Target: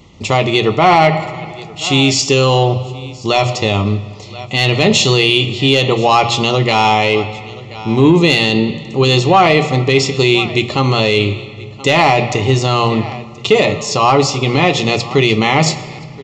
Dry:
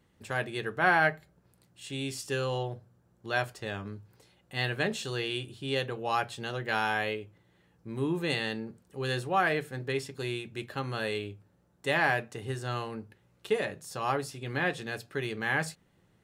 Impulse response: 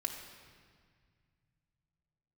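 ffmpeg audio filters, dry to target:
-filter_complex "[0:a]equalizer=f=420:t=o:w=2.2:g=-4,bandreject=f=60:t=h:w=6,bandreject=f=120:t=h:w=6,asplit=2[a][b];[1:a]atrim=start_sample=2205[c];[b][c]afir=irnorm=-1:irlink=0,volume=-8dB[d];[a][d]amix=inputs=2:normalize=0,aresample=16000,aresample=44100,asuperstop=centerf=1600:order=4:qfactor=2,aecho=1:1:1027:0.075,asoftclip=type=tanh:threshold=-19dB,alimiter=level_in=25dB:limit=-1dB:release=50:level=0:latency=1,volume=-1dB"

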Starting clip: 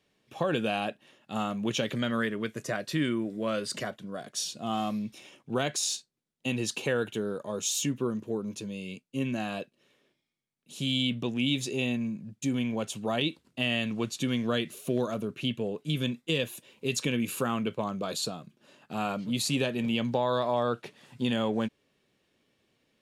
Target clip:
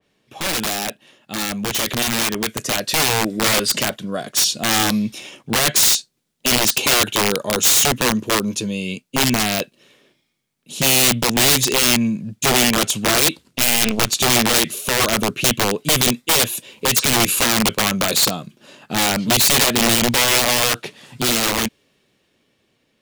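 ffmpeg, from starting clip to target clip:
-filter_complex "[0:a]aeval=exprs='(mod(17.8*val(0)+1,2)-1)/17.8':c=same,asettb=1/sr,asplit=3[a][b][c];[a]atrim=end=13.444[d];[b]atrim=start=13.44:end=14.09,asetpts=PTS-STARTPTS,afade=t=in:d=0.004:c=qsin,afade=t=out:st=0.646:d=0.004:c=qsin,aeval=exprs='0.0562*(cos(1*acos(clip(val(0)/0.0562,-1,1)))-cos(1*PI/2))+0.0251*(cos(2*acos(clip(val(0)/0.0562,-1,1)))-cos(2*PI/2))+0.00794*(cos(3*acos(clip(val(0)/0.0562,-1,1)))-cos(3*PI/2))':c=same[e];[c]atrim=start=14.086[f];[d][e]acrossfade=d=0.004:c1=hsin:c2=qsin[g];[g][f]acrossfade=d=0.004:c1=qsin:c2=hsin,dynaudnorm=f=600:g=9:m=6.5dB,adynamicequalizer=threshold=0.0126:dfrequency=2400:dqfactor=0.7:tfrequency=2400:tqfactor=0.7:attack=5:release=100:ratio=0.375:range=2.5:mode=boostabove:tftype=highshelf,volume=6.5dB"

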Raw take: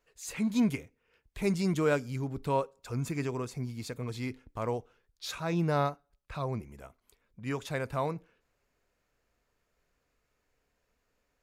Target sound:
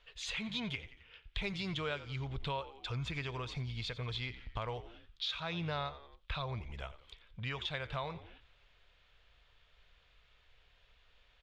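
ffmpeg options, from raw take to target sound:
-filter_complex "[0:a]lowpass=f=3.4k:t=q:w=5.2,equalizer=f=270:w=0.98:g=-14,asplit=2[a][b];[b]asplit=3[c][d][e];[c]adelay=88,afreqshift=-70,volume=-16.5dB[f];[d]adelay=176,afreqshift=-140,volume=-25.4dB[g];[e]adelay=264,afreqshift=-210,volume=-34.2dB[h];[f][g][h]amix=inputs=3:normalize=0[i];[a][i]amix=inputs=2:normalize=0,acompressor=threshold=-48dB:ratio=3,lowshelf=f=85:g=7.5,volume=7.5dB"

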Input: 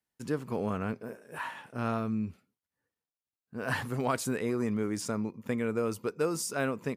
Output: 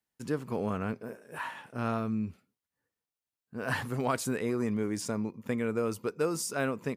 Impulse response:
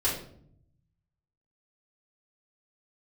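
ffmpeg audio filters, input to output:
-filter_complex "[0:a]asettb=1/sr,asplit=3[a][b][c];[a]atrim=end=4.714[d];[b]atrim=start=4.71:end=5.21,asetpts=PTS-STARTPTS,afade=t=in:d=0.004:c=qsin,afade=t=out:st=0.496:d=0.004:c=qsin,bandreject=f=1.3k:w=8.9[e];[c]atrim=start=5.206[f];[d][e]acrossfade=d=0.004:c1=hsin:c2=qsin[g];[g][f]acrossfade=d=0.004:c1=qsin:c2=hsin"

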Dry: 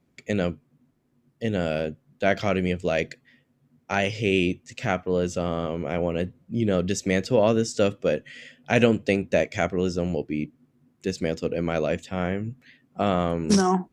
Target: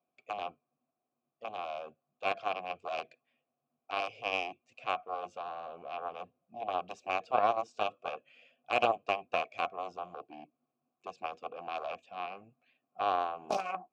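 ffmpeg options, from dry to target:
-filter_complex "[0:a]aeval=exprs='0.668*(cos(1*acos(clip(val(0)/0.668,-1,1)))-cos(1*PI/2))+0.15*(cos(7*acos(clip(val(0)/0.668,-1,1)))-cos(7*PI/2))':c=same,asplit=3[a][b][c];[a]bandpass=f=730:t=q:w=8,volume=0dB[d];[b]bandpass=f=1.09k:t=q:w=8,volume=-6dB[e];[c]bandpass=f=2.44k:t=q:w=8,volume=-9dB[f];[d][e][f]amix=inputs=3:normalize=0,volume=4.5dB"

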